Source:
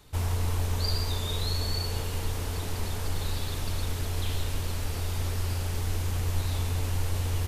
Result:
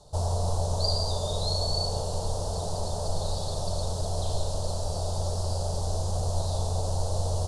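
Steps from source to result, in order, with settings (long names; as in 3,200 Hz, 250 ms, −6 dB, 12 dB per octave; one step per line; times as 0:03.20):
drawn EQ curve 110 Hz 0 dB, 170 Hz +5 dB, 260 Hz −8 dB, 430 Hz +2 dB, 610 Hz +14 dB, 1,000 Hz +2 dB, 2,200 Hz −26 dB, 4,300 Hz +4 dB, 9,900 Hz +2 dB, 14,000 Hz −28 dB
on a send: convolution reverb RT60 0.85 s, pre-delay 20 ms, DRR 11 dB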